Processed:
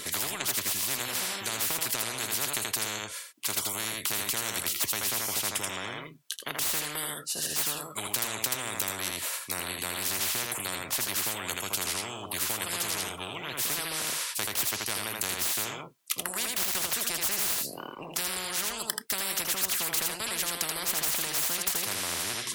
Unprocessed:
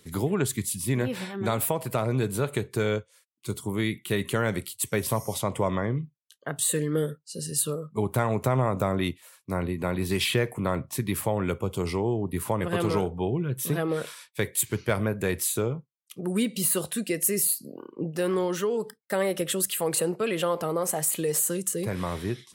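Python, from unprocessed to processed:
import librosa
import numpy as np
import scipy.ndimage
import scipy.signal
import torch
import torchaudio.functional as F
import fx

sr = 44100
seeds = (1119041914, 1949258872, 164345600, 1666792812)

p1 = fx.dead_time(x, sr, dead_ms=0.069, at=(16.49, 16.93))
p2 = fx.cheby_harmonics(p1, sr, harmonics=(4,), levels_db=(-29,), full_scale_db=-10.5)
p3 = fx.highpass(p2, sr, hz=240.0, slope=6)
p4 = p3 + 0.31 * np.pad(p3, (int(3.0 * sr / 1000.0), 0))[:len(p3)]
p5 = p4 + fx.echo_single(p4, sr, ms=81, db=-7.5, dry=0)
p6 = fx.spectral_comp(p5, sr, ratio=10.0)
y = F.gain(torch.from_numpy(p6), 4.5).numpy()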